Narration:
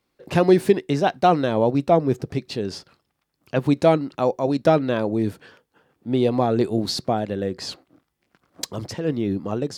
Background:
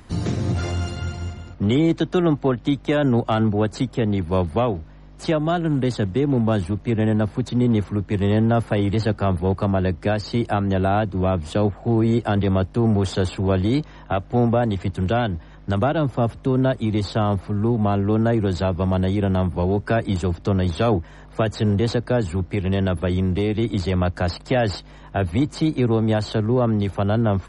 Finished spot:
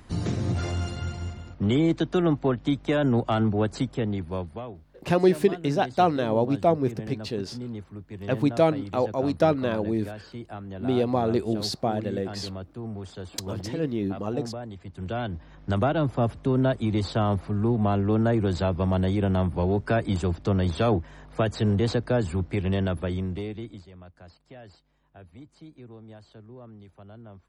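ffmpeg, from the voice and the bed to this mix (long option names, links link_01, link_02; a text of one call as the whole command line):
ffmpeg -i stem1.wav -i stem2.wav -filter_complex "[0:a]adelay=4750,volume=-4dB[link_01];[1:a]volume=9.5dB,afade=type=out:start_time=3.8:duration=0.82:silence=0.223872,afade=type=in:start_time=14.86:duration=0.85:silence=0.211349,afade=type=out:start_time=22.65:duration=1.22:silence=0.0707946[link_02];[link_01][link_02]amix=inputs=2:normalize=0" out.wav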